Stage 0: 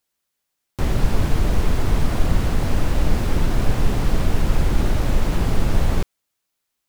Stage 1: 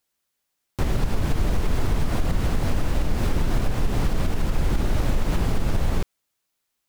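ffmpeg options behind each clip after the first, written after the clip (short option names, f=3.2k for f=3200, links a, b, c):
-af "alimiter=limit=-12.5dB:level=0:latency=1:release=118"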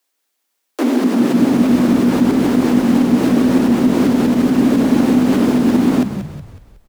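-filter_complex "[0:a]afreqshift=230,asplit=6[a][b][c][d][e][f];[b]adelay=184,afreqshift=-52,volume=-10dB[g];[c]adelay=368,afreqshift=-104,volume=-16.7dB[h];[d]adelay=552,afreqshift=-156,volume=-23.5dB[i];[e]adelay=736,afreqshift=-208,volume=-30.2dB[j];[f]adelay=920,afreqshift=-260,volume=-37dB[k];[a][g][h][i][j][k]amix=inputs=6:normalize=0,volume=6dB"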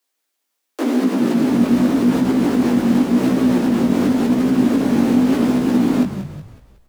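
-af "flanger=delay=15:depth=6.6:speed=0.89"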